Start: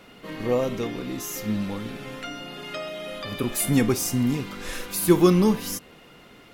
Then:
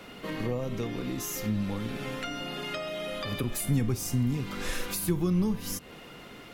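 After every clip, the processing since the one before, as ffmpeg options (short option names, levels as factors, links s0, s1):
-filter_complex "[0:a]acrossover=split=140[s0][s1];[s1]acompressor=threshold=0.0178:ratio=5[s2];[s0][s2]amix=inputs=2:normalize=0,volume=1.41"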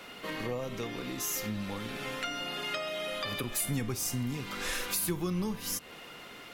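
-af "lowshelf=f=430:g=-10.5,volume=1.26"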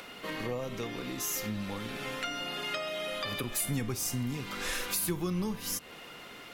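-af "acompressor=mode=upward:threshold=0.00501:ratio=2.5"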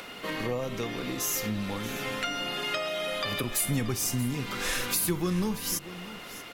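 -af "aecho=1:1:632:0.168,volume=1.58"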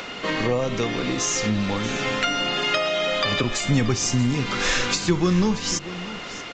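-af "aresample=16000,aresample=44100,volume=2.66"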